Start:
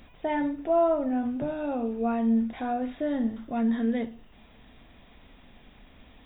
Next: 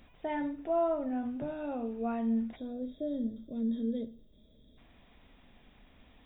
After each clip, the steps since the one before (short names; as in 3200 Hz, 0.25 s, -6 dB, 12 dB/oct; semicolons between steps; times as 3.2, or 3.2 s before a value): spectral gain 2.56–4.78, 650–3200 Hz -20 dB; gain -6.5 dB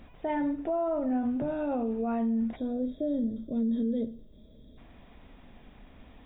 high shelf 2300 Hz -9.5 dB; limiter -31 dBFS, peak gain reduction 9.5 dB; gain +8 dB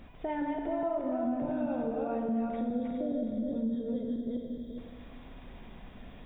regenerating reverse delay 0.208 s, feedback 46%, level -1 dB; Schroeder reverb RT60 1.9 s, combs from 33 ms, DRR 5.5 dB; compressor 2:1, threshold -34 dBFS, peak gain reduction 8 dB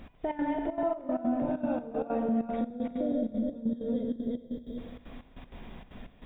step gate "x..x.xxxx.x" 193 bpm -12 dB; gain +3 dB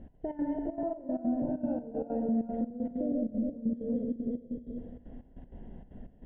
running mean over 37 samples